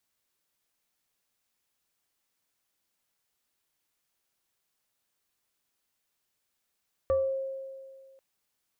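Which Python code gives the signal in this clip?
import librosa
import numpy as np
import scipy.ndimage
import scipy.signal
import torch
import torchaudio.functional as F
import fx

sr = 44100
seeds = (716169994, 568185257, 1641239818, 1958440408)

y = fx.fm2(sr, length_s=1.09, level_db=-21.0, carrier_hz=536.0, ratio=1.16, index=0.5, index_s=0.41, decay_s=1.94, shape='exponential')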